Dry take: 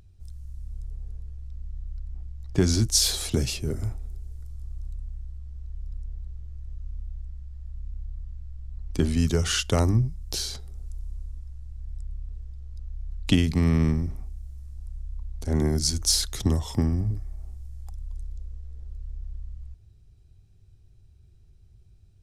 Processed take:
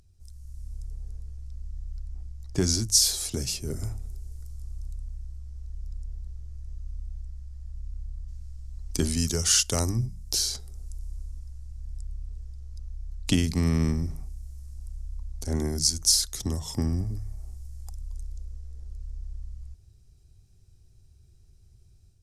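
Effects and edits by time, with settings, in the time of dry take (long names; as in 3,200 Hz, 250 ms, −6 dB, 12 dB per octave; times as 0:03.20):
0:08.28–0:10.06: high-shelf EQ 3,300 Hz +6.5 dB
whole clip: flat-topped bell 7,700 Hz +9 dB; hum removal 51.38 Hz, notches 4; automatic gain control gain up to 5 dB; level −6 dB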